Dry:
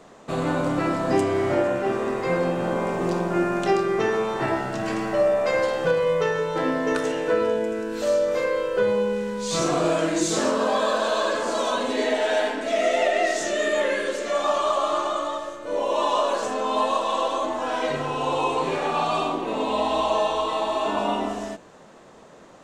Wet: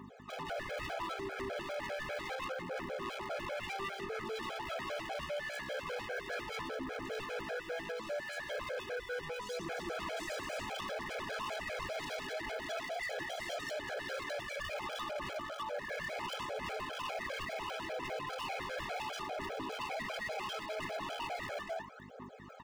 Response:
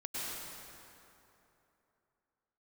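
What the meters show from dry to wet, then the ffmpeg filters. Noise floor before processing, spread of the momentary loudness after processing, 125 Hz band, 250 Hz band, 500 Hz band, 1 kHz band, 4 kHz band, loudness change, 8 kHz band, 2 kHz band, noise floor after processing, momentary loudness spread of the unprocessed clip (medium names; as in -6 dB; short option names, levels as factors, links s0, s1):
-48 dBFS, 2 LU, -18.0 dB, -21.0 dB, -18.5 dB, -16.0 dB, -11.0 dB, -16.0 dB, -16.5 dB, -10.0 dB, -48 dBFS, 4 LU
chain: -filter_complex "[0:a]lowpass=2300,bandreject=f=60:t=h:w=6,bandreject=f=120:t=h:w=6,bandreject=f=180:t=h:w=6,bandreject=f=240:t=h:w=6,bandreject=f=300:t=h:w=6,bandreject=f=360:t=h:w=6,bandreject=f=420:t=h:w=6,bandreject=f=480:t=h:w=6,bandreject=f=540:t=h:w=6,bandreject=f=600:t=h:w=6,acrossover=split=1000[s0][s1];[s1]alimiter=level_in=1.68:limit=0.0631:level=0:latency=1,volume=0.596[s2];[s0][s2]amix=inputs=2:normalize=0,aecho=1:1:122.4|253.6:0.447|0.794,aeval=exprs='val(0)+0.02*(sin(2*PI*50*n/s)+sin(2*PI*2*50*n/s)/2+sin(2*PI*3*50*n/s)/3+sin(2*PI*4*50*n/s)/4+sin(2*PI*5*50*n/s)/5)':c=same,aphaser=in_gain=1:out_gain=1:delay=1.9:decay=0.68:speed=0.72:type=triangular,asoftclip=type=tanh:threshold=0.2,aemphasis=mode=production:type=50kf,areverse,acompressor=threshold=0.0316:ratio=12,areverse,highpass=380,aeval=exprs='0.0188*(abs(mod(val(0)/0.0188+3,4)-2)-1)':c=same,afftfilt=real='re*gt(sin(2*PI*5*pts/sr)*(1-2*mod(floor(b*sr/1024/430),2)),0)':imag='im*gt(sin(2*PI*5*pts/sr)*(1-2*mod(floor(b*sr/1024/430),2)),0)':win_size=1024:overlap=0.75,volume=1.33"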